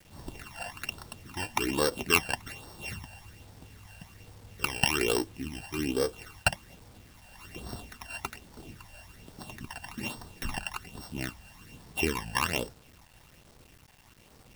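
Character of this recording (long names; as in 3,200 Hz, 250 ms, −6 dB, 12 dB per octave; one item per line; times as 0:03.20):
a buzz of ramps at a fixed pitch in blocks of 16 samples
phaser sweep stages 12, 1.2 Hz, lowest notch 360–2,500 Hz
a quantiser's noise floor 10 bits, dither none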